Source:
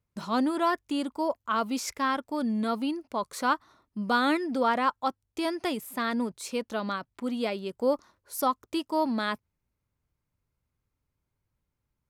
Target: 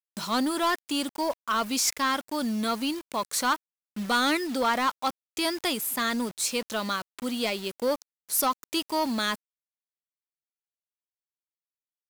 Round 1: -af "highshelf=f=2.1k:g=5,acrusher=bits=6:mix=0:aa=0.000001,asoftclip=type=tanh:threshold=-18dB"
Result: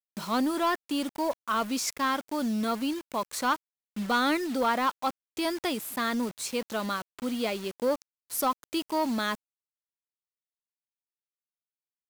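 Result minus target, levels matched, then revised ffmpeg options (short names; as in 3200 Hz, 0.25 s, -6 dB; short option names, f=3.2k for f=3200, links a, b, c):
4000 Hz band -3.5 dB
-af "highshelf=f=2.1k:g=14,acrusher=bits=6:mix=0:aa=0.000001,asoftclip=type=tanh:threshold=-18dB"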